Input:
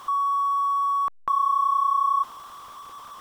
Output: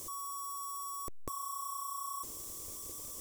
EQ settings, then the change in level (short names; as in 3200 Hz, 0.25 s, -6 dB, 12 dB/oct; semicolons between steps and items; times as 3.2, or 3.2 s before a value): EQ curve 100 Hz 0 dB, 180 Hz -9 dB, 340 Hz -1 dB, 570 Hz -8 dB, 800 Hz -24 dB, 1400 Hz -30 dB, 2200 Hz -15 dB, 3200 Hz -19 dB, 7200 Hz +6 dB; +7.5 dB